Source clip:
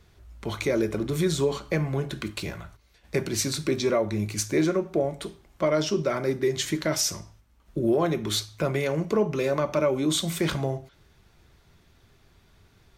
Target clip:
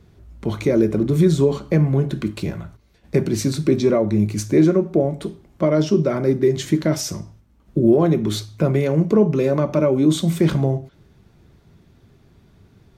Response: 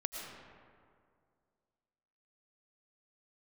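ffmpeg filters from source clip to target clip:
-af "equalizer=f=190:w=0.37:g=13.5,volume=-2dB"

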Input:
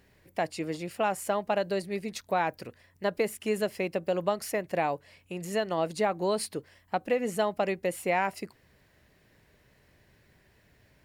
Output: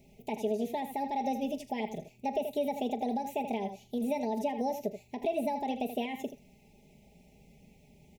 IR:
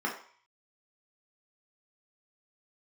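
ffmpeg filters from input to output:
-filter_complex "[0:a]lowshelf=f=200:g=5.5,aecho=1:1:6.5:0.68,asplit=2[a][b];[1:a]atrim=start_sample=2205[c];[b][c]afir=irnorm=-1:irlink=0,volume=-24.5dB[d];[a][d]amix=inputs=2:normalize=0,asetrate=59535,aresample=44100,acrossover=split=3500[e][f];[f]acompressor=threshold=-49dB:ratio=4:attack=1:release=60[g];[e][g]amix=inputs=2:normalize=0,equalizer=f=3.4k:t=o:w=1.3:g=-6.5,aecho=1:1:40|80:0.141|0.251,alimiter=limit=-21.5dB:level=0:latency=1:release=103,asuperstop=centerf=1300:order=8:qfactor=1.1"

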